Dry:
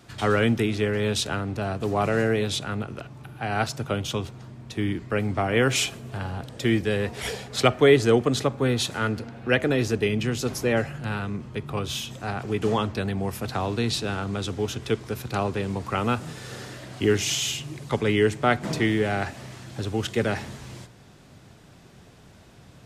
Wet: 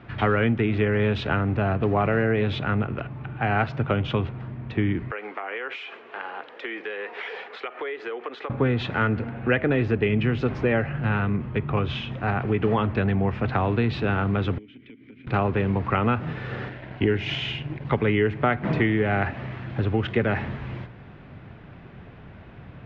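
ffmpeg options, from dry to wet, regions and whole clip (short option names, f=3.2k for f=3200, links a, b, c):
-filter_complex "[0:a]asettb=1/sr,asplit=3[a][b][c];[a]atrim=end=5.114[d];[b]atrim=start=5.11:end=8.5,asetpts=PTS-STARTPTS,afade=t=in:d=0.004:c=qsin,afade=t=out:st=3.386:d=0.004:c=qsin,highpass=f=440:w=0.5412,highpass=f=440:w=1.3066,equalizer=f=620:t=o:w=0.48:g=-7,acompressor=threshold=-33dB:ratio=12:attack=3.2:release=140:knee=1:detection=peak[e];[c]atrim=start=8.496[f];[d][e]acrossfade=d=0.004:c1=hsin:c2=qsin[g];[g][f]acrossfade=d=0.004:c1=qsin:c2=hsin,asettb=1/sr,asplit=3[h][i][j];[h]atrim=end=14.584[k];[i]atrim=start=14.58:end=15.27,asetpts=PTS-STARTPTS,afade=t=in:d=0.004:c=qsin,afade=t=out:st=0.686:d=0.004:c=qsin,asplit=3[l][m][n];[l]bandpass=f=270:t=q:w=8,volume=0dB[o];[m]bandpass=f=2.29k:t=q:w=8,volume=-6dB[p];[n]bandpass=f=3.01k:t=q:w=8,volume=-9dB[q];[o][p][q]amix=inputs=3:normalize=0,acompressor=threshold=-47dB:ratio=10:attack=3.2:release=140:knee=1:detection=peak[r];[j]atrim=start=15.266[s];[k][r]acrossfade=d=0.004:c1=hsin:c2=qsin[t];[t][s]acrossfade=d=0.004:c1=qsin:c2=hsin,asettb=1/sr,asplit=3[u][v][w];[u]atrim=end=16.694[x];[v]atrim=start=16.69:end=17.85,asetpts=PTS-STARTPTS,afade=t=in:d=0.004:c=qsin,afade=t=out:st=1.156:d=0.004:c=qsin,aeval=exprs='sgn(val(0))*max(abs(val(0))-0.00596,0)':c=same,adynamicsmooth=sensitivity=7:basefreq=7.7k,bandreject=f=1.2k:w=5.8[y];[w]atrim=start=17.846[z];[x][y]acrossfade=d=0.004:c1=hsin:c2=qsin[aa];[aa][z]acrossfade=d=0.004:c1=qsin:c2=hsin,lowpass=f=2.5k:w=0.5412,lowpass=f=2.5k:w=1.3066,equalizer=f=540:w=0.38:g=-3.5,acompressor=threshold=-27dB:ratio=4,volume=8.5dB"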